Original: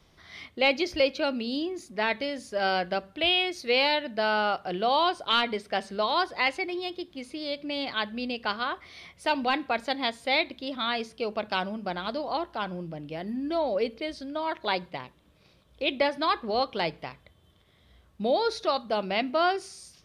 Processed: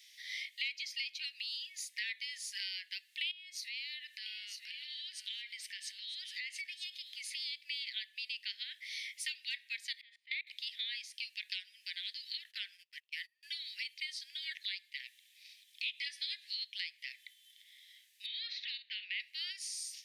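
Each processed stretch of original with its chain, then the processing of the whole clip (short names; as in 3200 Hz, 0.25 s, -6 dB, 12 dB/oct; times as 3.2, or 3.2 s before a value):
3.31–7.35 compressor 8:1, threshold -39 dBFS + echo 0.95 s -11.5 dB
10.01–10.47 level quantiser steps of 24 dB + air absorption 410 m
12.44–13.43 resonant high-pass 1100 Hz, resonance Q 7.1 + gate -46 dBFS, range -30 dB
15.84–16.57 bell 6500 Hz +9 dB 2.8 oct + compressor 1.5:1, threshold -34 dBFS + doubler 14 ms -2 dB
18.26–19.2 LPF 3200 Hz 24 dB/oct + doubler 49 ms -11.5 dB
whole clip: steep high-pass 1800 Hz 96 dB/oct; high shelf 3700 Hz +6.5 dB; compressor 5:1, threshold -43 dBFS; gain +4.5 dB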